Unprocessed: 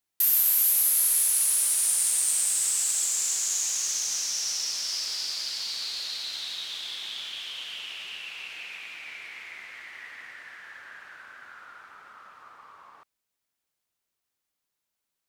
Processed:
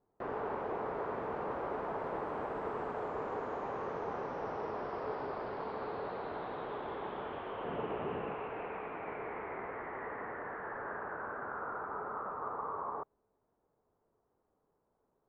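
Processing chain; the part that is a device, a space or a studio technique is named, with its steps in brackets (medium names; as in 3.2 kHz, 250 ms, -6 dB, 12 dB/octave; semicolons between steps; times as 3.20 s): under water (low-pass 990 Hz 24 dB/octave; peaking EQ 430 Hz +9 dB 0.3 oct); 7.64–8.35 s: peaking EQ 160 Hz +8.5 dB 2.9 oct; trim +16.5 dB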